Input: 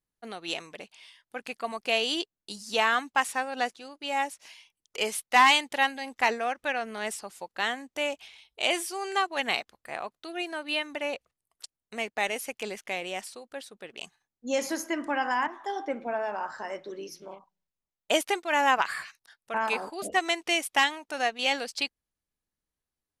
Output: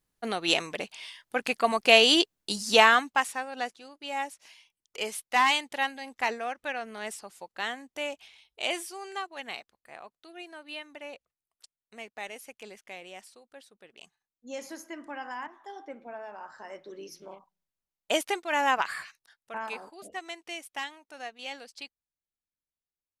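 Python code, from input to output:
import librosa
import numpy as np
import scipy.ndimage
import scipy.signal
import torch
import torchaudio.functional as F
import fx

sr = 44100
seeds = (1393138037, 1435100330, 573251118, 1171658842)

y = fx.gain(x, sr, db=fx.line((2.72, 8.5), (3.38, -4.0), (8.71, -4.0), (9.36, -10.5), (16.37, -10.5), (17.2, -2.0), (19.02, -2.0), (20.15, -12.5)))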